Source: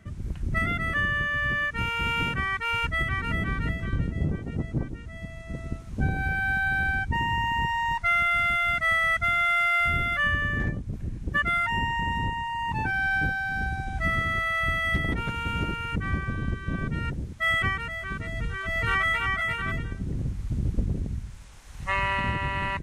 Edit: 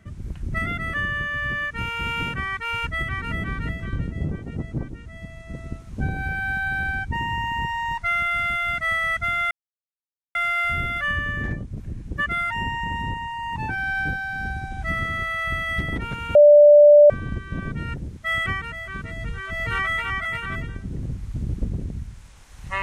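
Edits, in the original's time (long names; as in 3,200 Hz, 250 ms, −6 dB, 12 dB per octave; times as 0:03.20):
0:09.51: splice in silence 0.84 s
0:15.51–0:16.26: beep over 589 Hz −7 dBFS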